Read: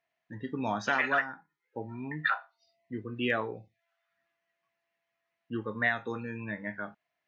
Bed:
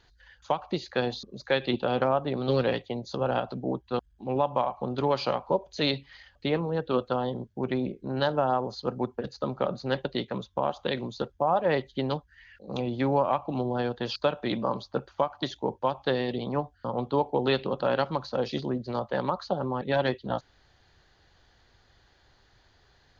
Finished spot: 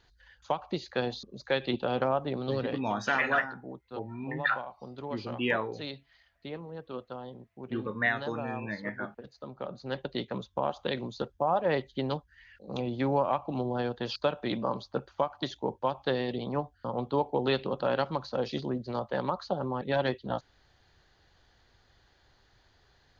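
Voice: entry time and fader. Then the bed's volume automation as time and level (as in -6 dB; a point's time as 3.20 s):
2.20 s, +0.5 dB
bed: 2.35 s -3 dB
2.93 s -13 dB
9.41 s -13 dB
10.25 s -2.5 dB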